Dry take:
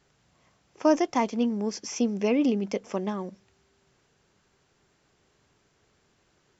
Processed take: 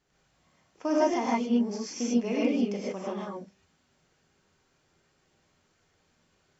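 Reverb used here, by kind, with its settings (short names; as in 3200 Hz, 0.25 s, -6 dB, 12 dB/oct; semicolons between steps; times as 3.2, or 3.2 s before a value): non-linear reverb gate 0.17 s rising, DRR -6.5 dB; gain -9 dB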